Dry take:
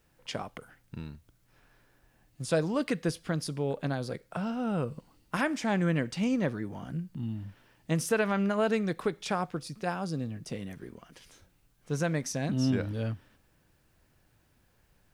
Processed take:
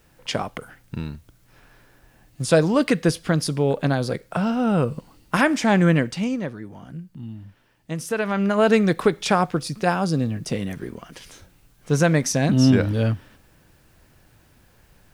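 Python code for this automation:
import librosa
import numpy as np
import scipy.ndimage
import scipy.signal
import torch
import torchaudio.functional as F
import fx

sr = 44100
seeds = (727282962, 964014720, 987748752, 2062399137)

y = fx.gain(x, sr, db=fx.line((5.92, 10.5), (6.5, -0.5), (7.98, -0.5), (8.75, 11.5)))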